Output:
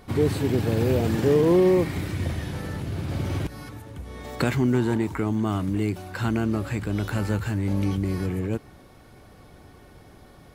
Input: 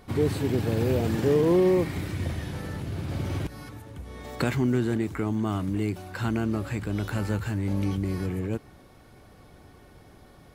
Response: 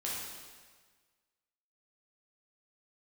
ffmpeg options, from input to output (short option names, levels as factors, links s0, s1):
-filter_complex "[0:a]asettb=1/sr,asplit=3[s0][s1][s2];[s0]atrim=end=4.744[s3];[s1]atrim=start=4.74:end=5.17,asetpts=PTS-STARTPTS,afade=t=in:d=0.004:c=qsin,afade=t=out:st=0.426:d=0.004:c=qsin,equalizer=f=930:t=o:w=0.26:g=14[s4];[s2]atrim=start=5.166[s5];[s3][s4]acrossfade=d=0.004:c1=hsin:c2=qsin[s6];[s6][s5]acrossfade=d=0.004:c1=qsin:c2=hsin,volume=1.33"